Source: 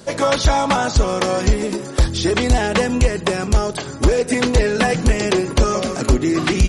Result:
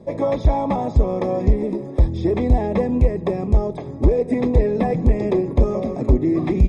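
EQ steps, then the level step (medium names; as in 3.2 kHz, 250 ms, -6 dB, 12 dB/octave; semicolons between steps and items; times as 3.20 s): boxcar filter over 30 samples; 0.0 dB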